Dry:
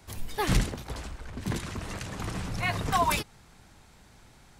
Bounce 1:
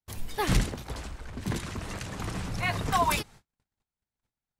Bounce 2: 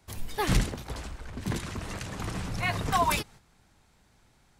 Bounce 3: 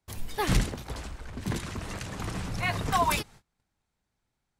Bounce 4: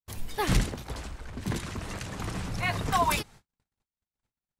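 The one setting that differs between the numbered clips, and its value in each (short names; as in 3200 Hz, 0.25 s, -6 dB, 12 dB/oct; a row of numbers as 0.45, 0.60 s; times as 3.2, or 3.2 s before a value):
gate, range: -40, -8, -26, -53 dB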